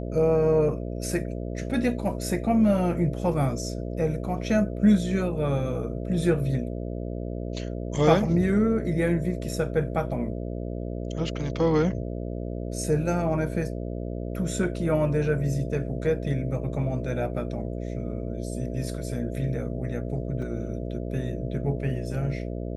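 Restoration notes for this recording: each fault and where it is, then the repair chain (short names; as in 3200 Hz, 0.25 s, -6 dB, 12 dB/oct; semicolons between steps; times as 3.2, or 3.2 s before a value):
buzz 60 Hz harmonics 11 -32 dBFS
20.42 gap 3.4 ms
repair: de-hum 60 Hz, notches 11; interpolate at 20.42, 3.4 ms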